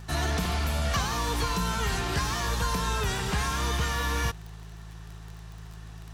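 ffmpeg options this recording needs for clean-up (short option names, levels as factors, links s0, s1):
-af "adeclick=t=4,bandreject=f=54:t=h:w=4,bandreject=f=108:t=h:w=4,bandreject=f=162:t=h:w=4"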